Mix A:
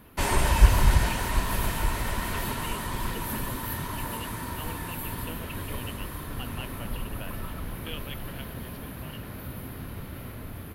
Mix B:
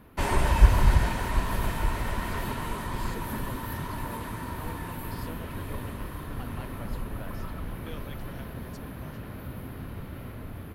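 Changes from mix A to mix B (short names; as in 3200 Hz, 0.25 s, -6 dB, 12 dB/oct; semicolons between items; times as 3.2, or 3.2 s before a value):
speech: remove synth low-pass 2900 Hz, resonance Q 8; background: add high shelf 3200 Hz -8.5 dB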